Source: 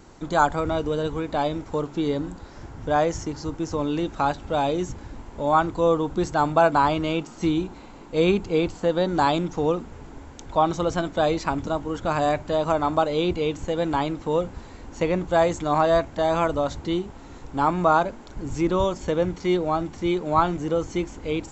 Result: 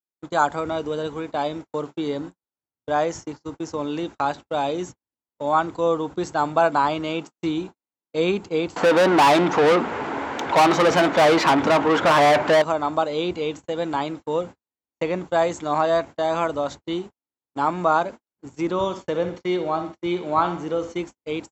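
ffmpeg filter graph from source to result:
-filter_complex "[0:a]asettb=1/sr,asplit=3[a][b][c];[a]atrim=end=8.764[d];[b]atrim=start=8.76:end=12.62,asetpts=PTS-STARTPTS,afade=t=in:d=0.004:c=qsin,afade=t=out:st=3.856:d=0.004:c=qsin,bass=f=250:g=1,treble=f=4k:g=-15,asplit=2[e][f];[f]highpass=f=720:p=1,volume=30dB,asoftclip=type=tanh:threshold=-8dB[g];[e][g]amix=inputs=2:normalize=0,lowpass=f=4.6k:p=1,volume=-6dB[h];[c]atrim=start=12.616[i];[d][h]acrossfade=d=0.004:c1=hsin:c2=qsin[j];[j][i]acrossfade=d=0.004:c1=qsin:c2=hsin,asettb=1/sr,asplit=3[k][l][m];[k]atrim=end=18.724[n];[l]atrim=start=18.72:end=20.96,asetpts=PTS-STARTPTS,afade=t=in:d=0.004:c=qsin,afade=t=out:st=2.236:d=0.004:c=qsin,lowpass=6.1k,aecho=1:1:63|126|189|252:0.299|0.125|0.0527|0.0221,atrim=end_sample=98784[o];[m]atrim=start=20.956[p];[n][o]acrossfade=d=0.004:c1=hsin:c2=qsin[q];[q][p]acrossfade=d=0.004:c1=qsin:c2=hsin,lowshelf=f=140:g=-11.5,agate=range=-54dB:threshold=-33dB:ratio=16:detection=peak,highpass=76"

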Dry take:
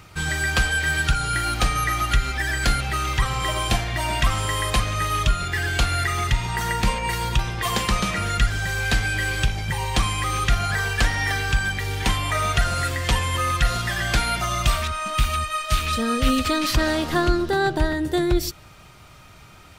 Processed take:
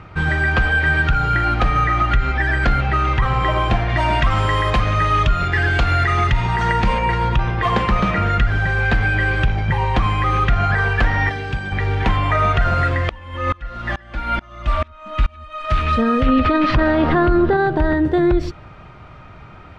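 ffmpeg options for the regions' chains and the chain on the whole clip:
-filter_complex "[0:a]asettb=1/sr,asplit=3[a][b][c];[a]atrim=end=3.894[d];[b]atrim=start=3.89:end=7.05,asetpts=PTS-STARTPTS,afade=t=in:d=0.004:c=qsin,afade=t=out:st=3.156:d=0.004:c=qsin,lowpass=9.6k,highshelf=f=4.4k:g=10.5[e];[c]atrim=start=7.046[f];[d][e]acrossfade=d=0.004:c1=hsin:c2=qsin[g];[g][f]acrossfade=d=0.004:c1=qsin:c2=hsin,asettb=1/sr,asplit=3[h][i][j];[h]atrim=end=11.294[k];[i]atrim=start=11.29:end=11.72,asetpts=PTS-STARTPTS,afade=t=in:d=0.004:c=qsin,afade=t=out:st=0.426:d=0.004:c=qsin,highpass=f=210:p=1,equalizer=f=1.3k:t=o:w=1.8:g=-11.5[l];[j]atrim=start=11.716[m];[k][l]acrossfade=d=0.004:c1=hsin:c2=qsin[n];[n][m]acrossfade=d=0.004:c1=qsin:c2=hsin,asettb=1/sr,asplit=3[o][p][q];[o]atrim=end=13.094[r];[p]atrim=start=13.09:end=15.65,asetpts=PTS-STARTPTS,afade=t=in:d=0.004:c=qsin,afade=t=out:st=2.556:d=0.004:c=qsin,aecho=1:1:3.5:0.62,atrim=end_sample=112896,aeval=exprs='val(0)*pow(10,-29*if(lt(mod(-2.3*n/s,1),2*abs(-2.3)/1000),1-mod(-2.3*n/s,1)/(2*abs(-2.3)/1000),(mod(-2.3*n/s,1)-2*abs(-2.3)/1000)/(1-2*abs(-2.3)/1000))/20)':c=same[s];[q]atrim=start=15.646[t];[r][s]acrossfade=d=0.004:c1=hsin:c2=qsin[u];[u][t]acrossfade=d=0.004:c1=qsin:c2=hsin,asettb=1/sr,asplit=3[v][w][x];[v]atrim=end=16.264[y];[w]atrim=start=16.26:end=17.57,asetpts=PTS-STARTPTS,afade=t=in:d=0.004:c=qsin,afade=t=out:st=1.306:d=0.004:c=qsin,lowpass=4.2k,acontrast=30[z];[x]atrim=start=17.566[aa];[y][z]acrossfade=d=0.004:c1=hsin:c2=qsin[ab];[ab][aa]acrossfade=d=0.004:c1=qsin:c2=hsin,lowpass=1.8k,alimiter=level_in=14.5dB:limit=-1dB:release=50:level=0:latency=1,volume=-6.5dB"

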